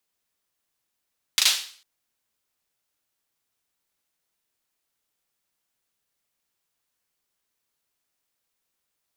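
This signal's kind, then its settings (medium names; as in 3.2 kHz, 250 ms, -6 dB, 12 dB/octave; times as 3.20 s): hand clap length 0.45 s, bursts 3, apart 37 ms, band 3.8 kHz, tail 0.47 s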